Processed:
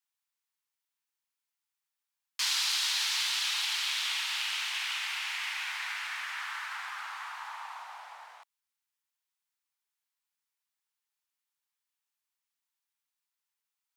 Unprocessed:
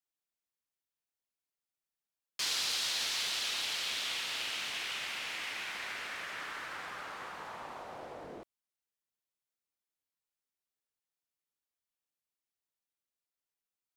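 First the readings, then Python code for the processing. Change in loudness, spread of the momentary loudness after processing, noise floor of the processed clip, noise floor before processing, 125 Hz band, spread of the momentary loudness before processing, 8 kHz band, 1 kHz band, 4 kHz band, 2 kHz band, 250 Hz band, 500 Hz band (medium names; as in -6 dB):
+4.0 dB, 16 LU, under -85 dBFS, under -85 dBFS, under -35 dB, 15 LU, +3.5 dB, +3.0 dB, +4.0 dB, +4.5 dB, under -40 dB, -15.0 dB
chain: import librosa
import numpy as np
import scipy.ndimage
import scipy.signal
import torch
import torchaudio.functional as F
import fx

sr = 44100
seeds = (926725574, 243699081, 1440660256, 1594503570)

y = scipy.signal.sosfilt(scipy.signal.ellip(4, 1.0, 70, 860.0, 'highpass', fs=sr, output='sos'), x)
y = y * 10.0 ** (4.5 / 20.0)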